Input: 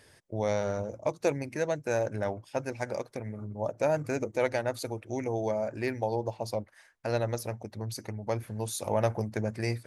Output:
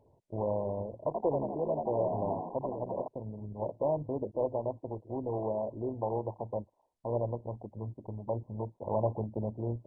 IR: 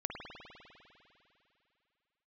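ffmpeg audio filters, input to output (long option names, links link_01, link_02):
-filter_complex "[0:a]equalizer=frequency=6100:width_type=o:width=1.3:gain=-10,asettb=1/sr,asplit=3[link_01][link_02][link_03];[link_01]atrim=end=0.964[link_04];[link_02]atrim=start=0.96:end=3.08,asetpts=PTS-STARTPTS,afade=type=in:duration=0.004:curve=qsin,afade=type=out:start_time=2.116:duration=0.004:curve=qsin,asplit=9[link_05][link_06][link_07][link_08][link_09][link_10][link_11][link_12][link_13];[link_06]adelay=84,afreqshift=67,volume=-3.5dB[link_14];[link_07]adelay=168,afreqshift=134,volume=-8.5dB[link_15];[link_08]adelay=252,afreqshift=201,volume=-13.6dB[link_16];[link_09]adelay=336,afreqshift=268,volume=-18.6dB[link_17];[link_10]adelay=420,afreqshift=335,volume=-23.6dB[link_18];[link_11]adelay=504,afreqshift=402,volume=-28.7dB[link_19];[link_12]adelay=588,afreqshift=469,volume=-33.7dB[link_20];[link_13]adelay=672,afreqshift=536,volume=-38.8dB[link_21];[link_05][link_14][link_15][link_16][link_17][link_18][link_19][link_20][link_21]amix=inputs=9:normalize=0,atrim=end_sample=93492[link_22];[link_03]atrim=start=3.076[link_23];[link_04][link_22]acrossfade=duration=0.004:curve1=hsin:curve2=qsin[link_24];[link_24][link_23]acrossfade=duration=0.004:curve1=qsin:curve2=hsin,volume=-3dB" -ar 22050 -c:a mp2 -b:a 8k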